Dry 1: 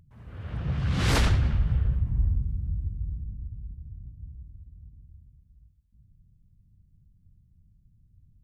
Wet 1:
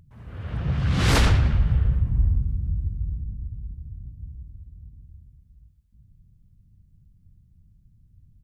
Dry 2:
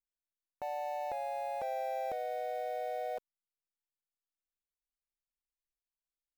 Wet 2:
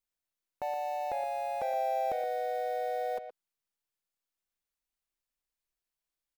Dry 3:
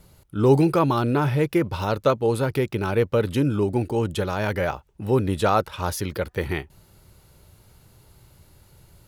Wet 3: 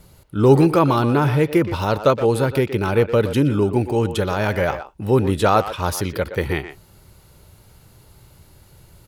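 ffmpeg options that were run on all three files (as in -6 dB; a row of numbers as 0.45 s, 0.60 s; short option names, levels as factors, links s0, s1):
-filter_complex "[0:a]asplit=2[s0][s1];[s1]adelay=120,highpass=300,lowpass=3400,asoftclip=type=hard:threshold=0.15,volume=0.316[s2];[s0][s2]amix=inputs=2:normalize=0,volume=1.58"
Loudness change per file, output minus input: +4.0 LU, +4.0 LU, +4.0 LU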